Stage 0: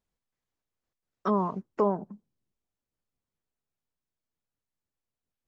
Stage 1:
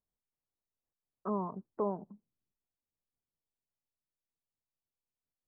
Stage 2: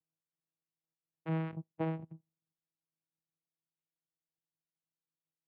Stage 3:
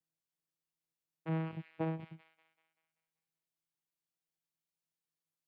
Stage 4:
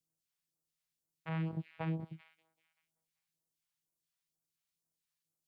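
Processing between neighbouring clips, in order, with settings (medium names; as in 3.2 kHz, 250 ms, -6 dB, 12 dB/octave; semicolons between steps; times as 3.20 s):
low-pass 1.2 kHz 24 dB/octave; trim -8 dB
vocoder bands 4, saw 161 Hz
feedback echo behind a high-pass 193 ms, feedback 48%, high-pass 2.5 kHz, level -4 dB; trim -1 dB
phase shifter stages 2, 2.1 Hz, lowest notch 290–2600 Hz; trim +3.5 dB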